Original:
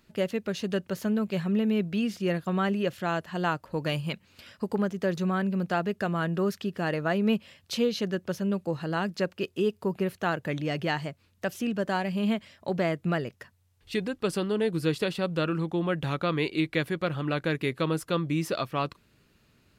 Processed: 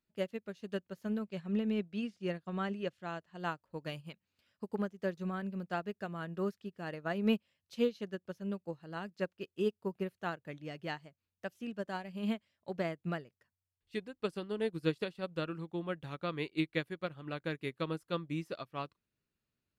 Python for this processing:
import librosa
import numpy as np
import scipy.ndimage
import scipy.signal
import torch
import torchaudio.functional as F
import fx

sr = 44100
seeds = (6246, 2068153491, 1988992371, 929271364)

y = fx.lowpass(x, sr, hz=9100.0, slope=12, at=(1.22, 3.4))
y = fx.upward_expand(y, sr, threshold_db=-36.0, expansion=2.5)
y = y * librosa.db_to_amplitude(-3.5)